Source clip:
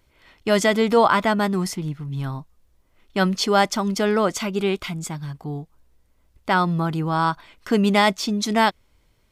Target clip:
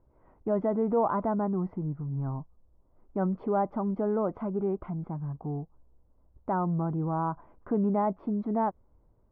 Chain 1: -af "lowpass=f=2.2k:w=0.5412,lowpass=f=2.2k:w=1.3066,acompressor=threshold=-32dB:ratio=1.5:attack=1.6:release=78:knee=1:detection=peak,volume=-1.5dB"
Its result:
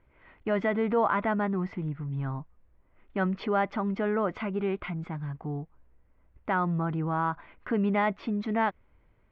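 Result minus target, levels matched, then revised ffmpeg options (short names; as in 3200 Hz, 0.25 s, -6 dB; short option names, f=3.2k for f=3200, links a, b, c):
2000 Hz band +14.5 dB
-af "lowpass=f=1k:w=0.5412,lowpass=f=1k:w=1.3066,acompressor=threshold=-32dB:ratio=1.5:attack=1.6:release=78:knee=1:detection=peak,volume=-1.5dB"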